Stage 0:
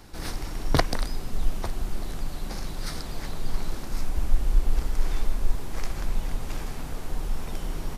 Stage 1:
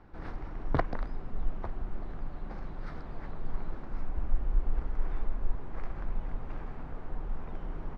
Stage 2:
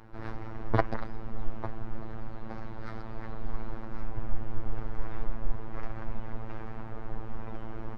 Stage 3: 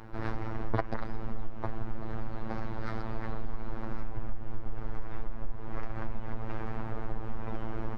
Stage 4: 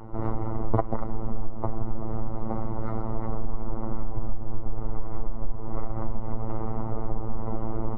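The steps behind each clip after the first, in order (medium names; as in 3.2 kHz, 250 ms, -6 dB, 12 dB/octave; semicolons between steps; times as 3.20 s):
Chebyshev low-pass 1.4 kHz, order 2; trim -5.5 dB
robot voice 111 Hz; trim +5.5 dB
compression 6:1, threshold -28 dBFS, peak gain reduction 12.5 dB; trim +5 dB
Savitzky-Golay filter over 65 samples; trim +6.5 dB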